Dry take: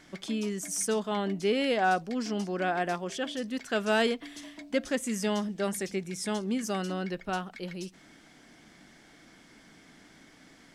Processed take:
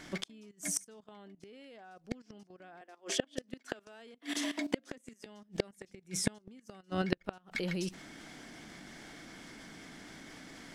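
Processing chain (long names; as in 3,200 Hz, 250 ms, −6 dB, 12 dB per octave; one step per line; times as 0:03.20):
0:02.81–0:05.26: Butterworth high-pass 220 Hz 72 dB per octave
output level in coarse steps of 16 dB
gate with flip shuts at −29 dBFS, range −34 dB
level +13.5 dB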